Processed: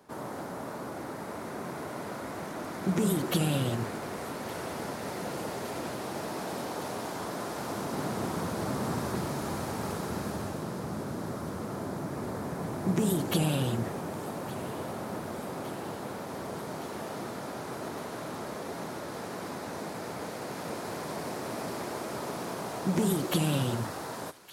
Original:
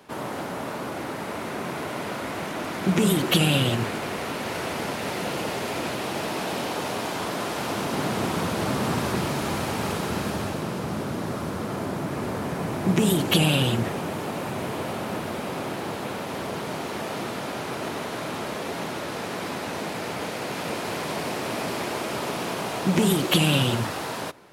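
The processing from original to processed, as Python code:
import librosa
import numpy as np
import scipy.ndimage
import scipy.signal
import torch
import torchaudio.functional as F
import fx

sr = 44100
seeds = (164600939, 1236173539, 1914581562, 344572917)

y = fx.peak_eq(x, sr, hz=2800.0, db=-9.0, octaves=0.99)
y = fx.echo_wet_highpass(y, sr, ms=1164, feedback_pct=79, hz=1500.0, wet_db=-17)
y = y * 10.0 ** (-6.0 / 20.0)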